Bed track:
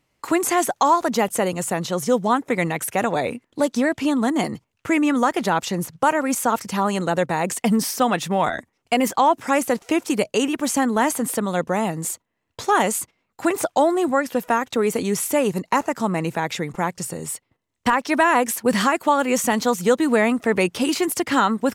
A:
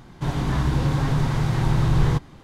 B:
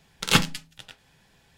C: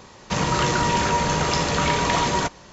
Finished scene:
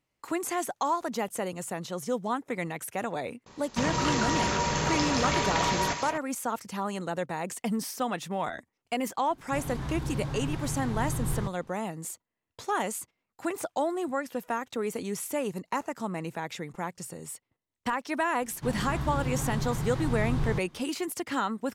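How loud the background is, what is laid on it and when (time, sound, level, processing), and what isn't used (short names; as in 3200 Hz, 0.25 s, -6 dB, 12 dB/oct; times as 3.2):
bed track -11 dB
3.46 add C -6.5 dB + delay with a stepping band-pass 0.172 s, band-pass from 5400 Hz, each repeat -1.4 oct, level -2 dB
9.3 add A -12 dB
18.41 add A -10 dB
not used: B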